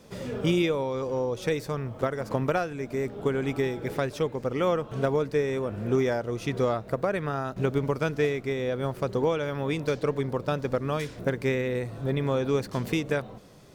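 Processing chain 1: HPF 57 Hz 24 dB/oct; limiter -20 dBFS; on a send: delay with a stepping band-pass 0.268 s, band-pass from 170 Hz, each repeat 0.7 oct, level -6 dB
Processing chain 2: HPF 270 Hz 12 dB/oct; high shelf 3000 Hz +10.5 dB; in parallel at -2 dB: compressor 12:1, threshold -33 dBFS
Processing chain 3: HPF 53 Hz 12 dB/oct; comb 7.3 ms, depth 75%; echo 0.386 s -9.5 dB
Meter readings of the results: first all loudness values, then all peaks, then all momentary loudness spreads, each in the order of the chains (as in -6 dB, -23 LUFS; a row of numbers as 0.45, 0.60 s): -30.5, -27.0, -25.0 LUFS; -17.5, -8.5, -8.5 dBFS; 3, 4, 5 LU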